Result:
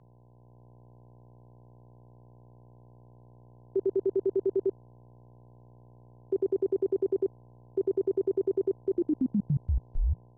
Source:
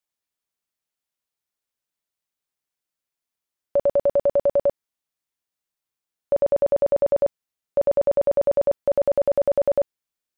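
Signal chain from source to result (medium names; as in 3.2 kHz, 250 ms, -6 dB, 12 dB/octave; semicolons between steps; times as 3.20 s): tape stop on the ending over 1.48 s; level held to a coarse grid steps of 19 dB; mains buzz 60 Hz, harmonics 20, -47 dBFS -5 dB/octave; frequency shift -180 Hz; level rider gain up to 3.5 dB; trim -9 dB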